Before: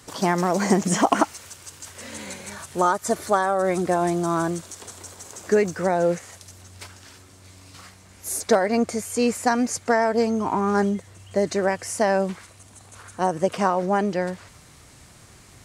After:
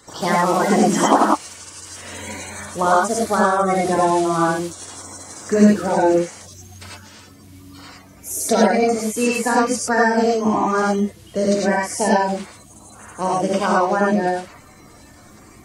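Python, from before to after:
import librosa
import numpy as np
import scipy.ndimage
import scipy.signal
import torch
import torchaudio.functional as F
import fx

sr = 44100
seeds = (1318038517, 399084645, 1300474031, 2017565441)

y = fx.spec_quant(x, sr, step_db=30)
y = fx.rev_gated(y, sr, seeds[0], gate_ms=130, shape='rising', drr_db=-3.5)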